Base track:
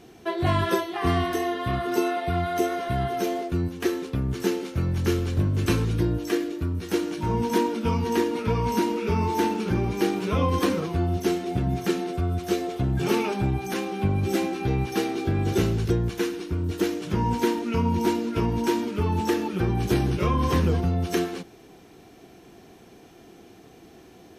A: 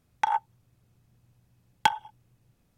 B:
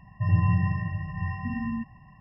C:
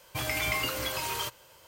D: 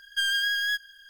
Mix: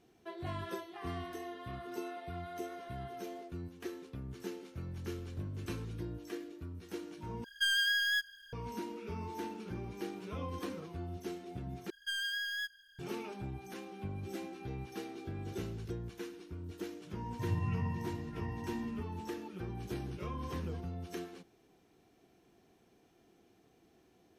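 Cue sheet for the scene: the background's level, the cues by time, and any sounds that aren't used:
base track -17.5 dB
7.44 replace with D -4.5 dB
11.9 replace with D -11 dB
17.19 add B -11.5 dB + doubler 14 ms -11.5 dB
not used: A, C

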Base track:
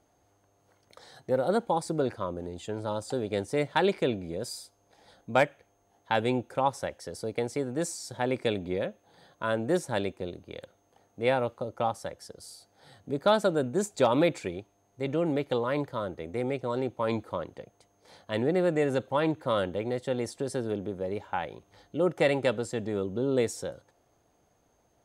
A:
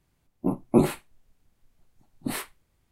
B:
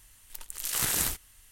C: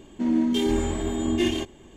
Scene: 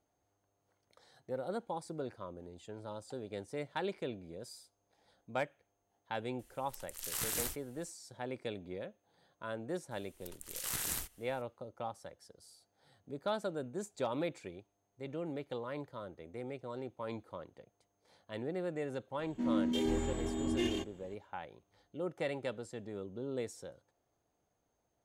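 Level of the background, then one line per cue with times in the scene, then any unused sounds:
base track -12.5 dB
6.39 add B -9 dB
9.91 add B -9.5 dB
19.19 add C -10 dB
not used: A

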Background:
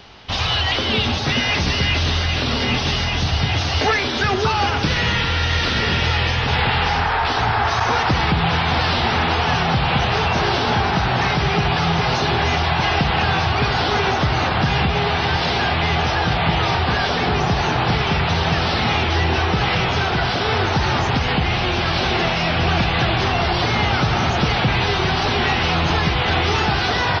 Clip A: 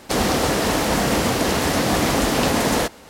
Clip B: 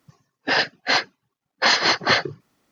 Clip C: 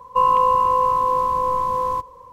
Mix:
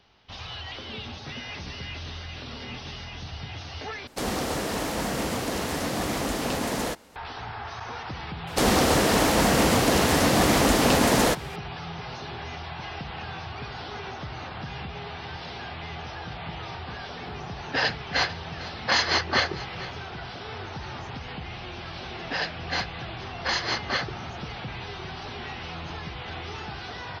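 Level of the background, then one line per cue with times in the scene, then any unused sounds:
background -18 dB
4.07 replace with A -9 dB
8.47 add A -1 dB
17.26 add B -5 dB + echo 0.449 s -16.5 dB
21.83 add B -9.5 dB
not used: C

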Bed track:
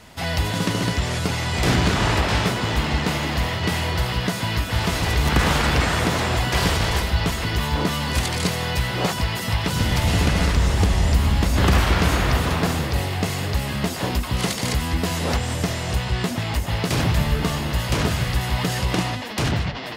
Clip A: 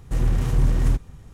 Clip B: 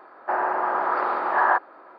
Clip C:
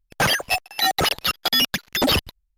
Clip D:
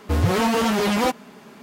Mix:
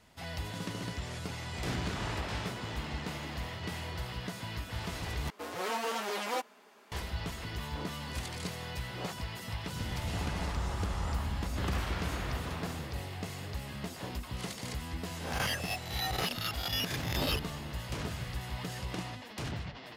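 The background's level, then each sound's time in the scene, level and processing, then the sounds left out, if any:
bed track -16 dB
5.3 replace with D -11 dB + HPF 460 Hz
9.88 add B -15 dB + negative-ratio compressor -31 dBFS
15.2 add C -17 dB + spectral swells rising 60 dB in 0.62 s
not used: A

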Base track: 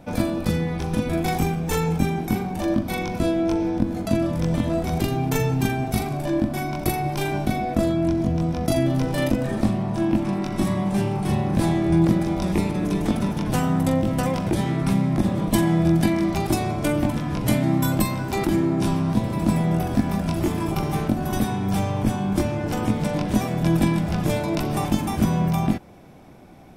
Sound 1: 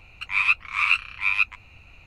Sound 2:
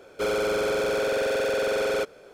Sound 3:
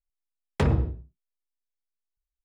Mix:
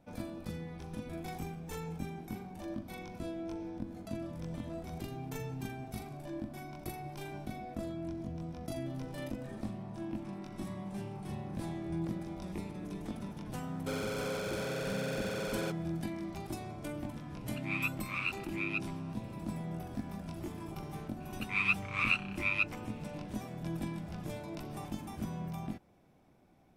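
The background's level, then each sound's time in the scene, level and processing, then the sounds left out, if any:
base track -18.5 dB
13.67 add 2 -12 dB + tilt +1.5 dB/oct
17.35 add 1 -15 dB
21.2 add 1 -9.5 dB
not used: 3

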